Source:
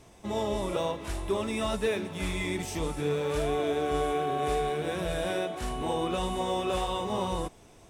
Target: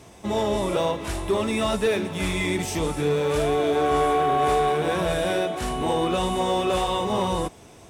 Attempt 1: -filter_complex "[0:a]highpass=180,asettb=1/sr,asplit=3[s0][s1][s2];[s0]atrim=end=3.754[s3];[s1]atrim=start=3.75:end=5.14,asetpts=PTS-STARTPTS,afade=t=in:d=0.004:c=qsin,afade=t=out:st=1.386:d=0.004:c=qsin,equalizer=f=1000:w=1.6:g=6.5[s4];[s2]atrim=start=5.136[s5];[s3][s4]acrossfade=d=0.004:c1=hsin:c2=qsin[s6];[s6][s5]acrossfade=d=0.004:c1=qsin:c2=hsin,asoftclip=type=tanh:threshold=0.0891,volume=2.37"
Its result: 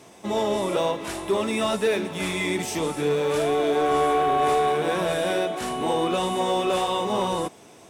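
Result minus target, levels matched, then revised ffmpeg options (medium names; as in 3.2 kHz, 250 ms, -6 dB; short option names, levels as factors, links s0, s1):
125 Hz band -4.5 dB
-filter_complex "[0:a]highpass=57,asettb=1/sr,asplit=3[s0][s1][s2];[s0]atrim=end=3.754[s3];[s1]atrim=start=3.75:end=5.14,asetpts=PTS-STARTPTS,afade=t=in:d=0.004:c=qsin,afade=t=out:st=1.386:d=0.004:c=qsin,equalizer=f=1000:w=1.6:g=6.5[s4];[s2]atrim=start=5.136[s5];[s3][s4]acrossfade=d=0.004:c1=hsin:c2=qsin[s6];[s6][s5]acrossfade=d=0.004:c1=qsin:c2=hsin,asoftclip=type=tanh:threshold=0.0891,volume=2.37"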